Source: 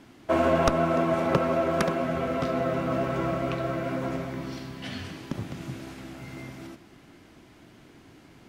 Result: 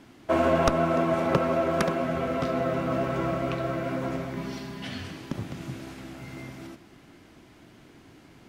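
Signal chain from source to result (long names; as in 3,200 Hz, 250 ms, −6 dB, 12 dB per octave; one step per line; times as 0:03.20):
0:04.36–0:04.85: comb filter 4.9 ms, depth 68%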